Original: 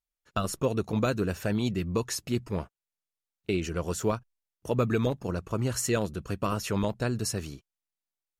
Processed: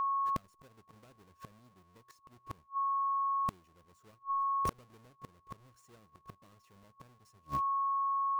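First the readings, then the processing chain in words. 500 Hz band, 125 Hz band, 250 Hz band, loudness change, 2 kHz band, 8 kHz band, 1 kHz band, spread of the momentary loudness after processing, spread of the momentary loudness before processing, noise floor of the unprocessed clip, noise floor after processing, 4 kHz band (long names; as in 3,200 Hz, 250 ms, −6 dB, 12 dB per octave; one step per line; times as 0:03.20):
−26.0 dB, −21.5 dB, −23.5 dB, −3.5 dB, −21.0 dB, below −20 dB, +6.0 dB, 14 LU, 8 LU, below −85 dBFS, −69 dBFS, below −20 dB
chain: each half-wave held at its own peak
steady tone 1,100 Hz −29 dBFS
gate with flip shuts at −22 dBFS, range −38 dB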